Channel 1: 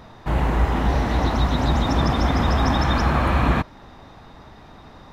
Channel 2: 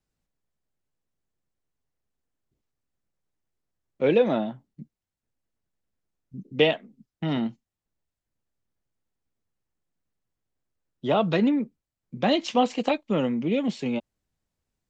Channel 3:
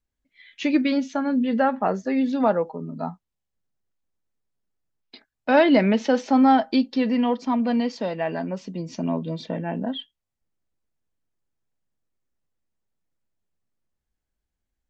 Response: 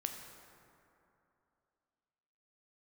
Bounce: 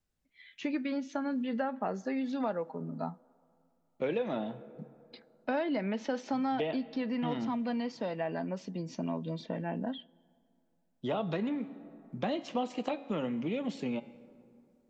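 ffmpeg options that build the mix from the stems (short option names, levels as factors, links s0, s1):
-filter_complex "[1:a]bandreject=f=138.3:t=h:w=4,bandreject=f=276.6:t=h:w=4,bandreject=f=414.9:t=h:w=4,bandreject=f=553.2:t=h:w=4,bandreject=f=691.5:t=h:w=4,bandreject=f=829.8:t=h:w=4,bandreject=f=968.1:t=h:w=4,bandreject=f=1106.4:t=h:w=4,bandreject=f=1244.7:t=h:w=4,bandreject=f=1383:t=h:w=4,bandreject=f=1521.3:t=h:w=4,bandreject=f=1659.6:t=h:w=4,bandreject=f=1797.9:t=h:w=4,bandreject=f=1936.2:t=h:w=4,bandreject=f=2074.5:t=h:w=4,bandreject=f=2212.8:t=h:w=4,bandreject=f=2351.1:t=h:w=4,bandreject=f=2489.4:t=h:w=4,bandreject=f=2627.7:t=h:w=4,bandreject=f=2766:t=h:w=4,bandreject=f=2904.3:t=h:w=4,bandreject=f=3042.6:t=h:w=4,bandreject=f=3180.9:t=h:w=4,bandreject=f=3319.2:t=h:w=4,bandreject=f=3457.5:t=h:w=4,bandreject=f=3595.8:t=h:w=4,bandreject=f=3734.1:t=h:w=4,bandreject=f=3872.4:t=h:w=4,bandreject=f=4010.7:t=h:w=4,bandreject=f=4149:t=h:w=4,bandreject=f=4287.3:t=h:w=4,bandreject=f=4425.6:t=h:w=4,bandreject=f=4563.9:t=h:w=4,bandreject=f=4702.2:t=h:w=4,bandreject=f=4840.5:t=h:w=4,bandreject=f=4978.8:t=h:w=4,volume=0.596,asplit=2[s0][s1];[s1]volume=0.2[s2];[2:a]volume=0.501,asplit=2[s3][s4];[s4]volume=0.075[s5];[3:a]atrim=start_sample=2205[s6];[s2][s5]amix=inputs=2:normalize=0[s7];[s7][s6]afir=irnorm=-1:irlink=0[s8];[s0][s3][s8]amix=inputs=3:normalize=0,acrossover=split=840|1700[s9][s10][s11];[s9]acompressor=threshold=0.0251:ratio=4[s12];[s10]acompressor=threshold=0.00794:ratio=4[s13];[s11]acompressor=threshold=0.00355:ratio=4[s14];[s12][s13][s14]amix=inputs=3:normalize=0"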